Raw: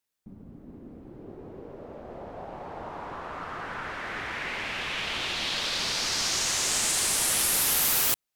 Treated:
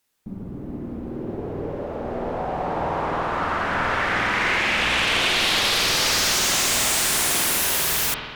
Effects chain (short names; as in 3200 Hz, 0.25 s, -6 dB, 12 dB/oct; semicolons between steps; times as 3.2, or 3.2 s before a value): sine folder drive 15 dB, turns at -10.5 dBFS; spring tank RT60 1.6 s, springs 50 ms, chirp 75 ms, DRR 0.5 dB; gain -8 dB